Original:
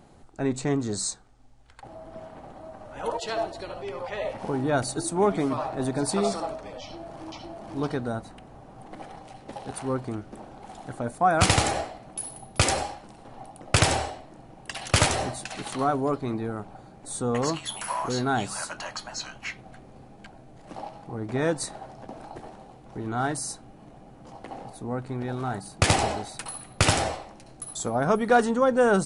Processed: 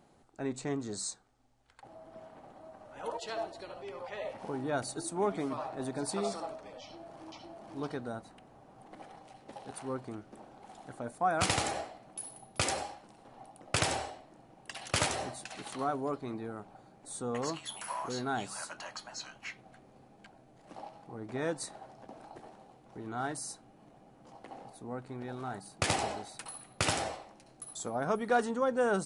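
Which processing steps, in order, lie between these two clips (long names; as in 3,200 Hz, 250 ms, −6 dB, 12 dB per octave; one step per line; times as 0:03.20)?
low-shelf EQ 95 Hz −12 dB
level −8 dB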